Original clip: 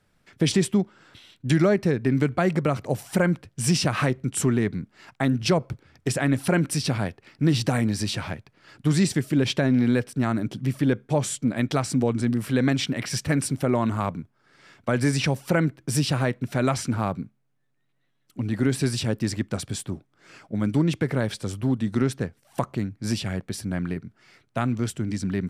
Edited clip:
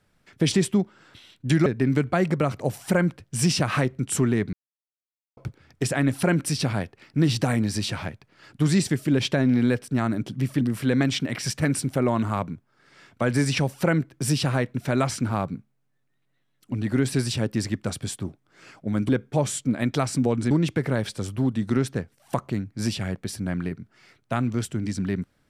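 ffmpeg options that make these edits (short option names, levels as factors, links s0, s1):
-filter_complex "[0:a]asplit=7[s0][s1][s2][s3][s4][s5][s6];[s0]atrim=end=1.662[s7];[s1]atrim=start=1.908:end=4.78,asetpts=PTS-STARTPTS,afade=t=out:st=2.868:d=0.004:c=hsin[s8];[s2]atrim=start=4.78:end=5.62,asetpts=PTS-STARTPTS,volume=0[s9];[s3]atrim=start=5.62:end=10.862,asetpts=PTS-STARTPTS,afade=t=in:d=0.004:c=hsin[s10];[s4]atrim=start=12.278:end=20.762[s11];[s5]atrim=start=10.858:end=12.282[s12];[s6]atrim=start=20.758[s13];[s8][s9][s10]concat=n=3:v=0:a=1[s14];[s7][s14]acrossfade=d=0.004:c1=hsin:c2=hsin[s15];[s15][s11]acrossfade=d=0.004:c1=hsin:c2=hsin[s16];[s16][s12]acrossfade=d=0.004:c1=hsin:c2=hsin[s17];[s17][s13]acrossfade=d=0.004:c1=hsin:c2=hsin"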